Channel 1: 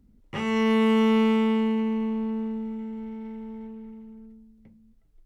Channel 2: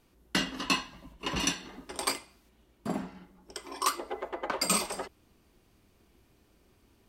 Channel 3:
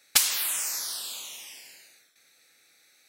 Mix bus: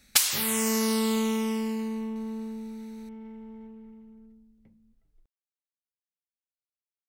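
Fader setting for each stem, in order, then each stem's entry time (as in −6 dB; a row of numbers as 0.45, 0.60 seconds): −6.0 dB, muted, −0.5 dB; 0.00 s, muted, 0.00 s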